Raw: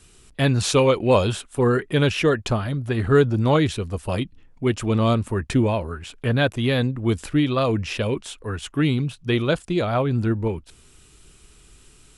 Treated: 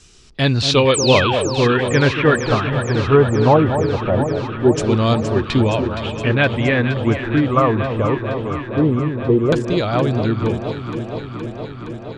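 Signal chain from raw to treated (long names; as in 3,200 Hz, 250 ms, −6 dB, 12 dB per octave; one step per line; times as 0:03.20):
auto-filter low-pass saw down 0.21 Hz 420–6,200 Hz
sound drawn into the spectrogram fall, 0:00.94–0:01.49, 280–9,400 Hz −24 dBFS
delay that swaps between a low-pass and a high-pass 234 ms, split 1,000 Hz, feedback 87%, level −8 dB
level +2.5 dB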